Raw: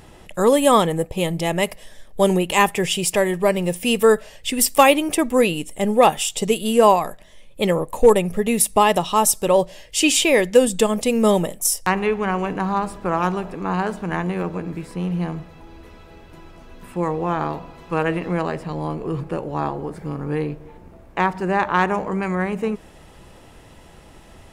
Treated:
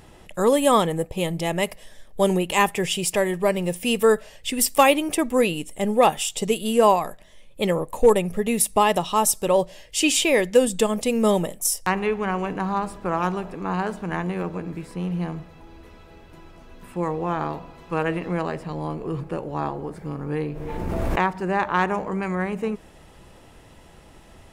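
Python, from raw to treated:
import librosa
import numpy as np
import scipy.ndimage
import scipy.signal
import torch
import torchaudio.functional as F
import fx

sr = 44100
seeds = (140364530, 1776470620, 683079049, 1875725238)

y = fx.pre_swell(x, sr, db_per_s=20.0, at=(20.48, 21.29))
y = y * 10.0 ** (-3.0 / 20.0)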